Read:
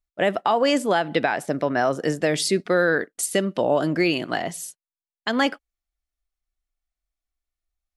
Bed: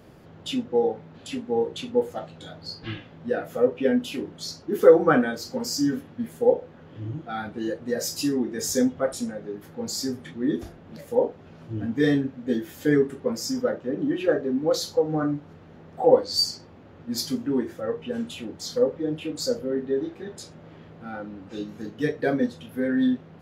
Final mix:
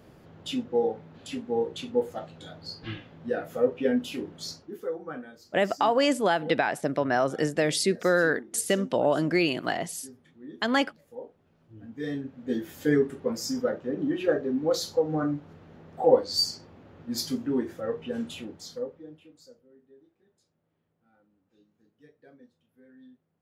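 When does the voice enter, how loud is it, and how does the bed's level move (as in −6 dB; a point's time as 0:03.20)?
5.35 s, −3.0 dB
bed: 0:04.53 −3 dB
0:04.84 −19 dB
0:11.68 −19 dB
0:12.61 −2.5 dB
0:18.38 −2.5 dB
0:19.66 −31 dB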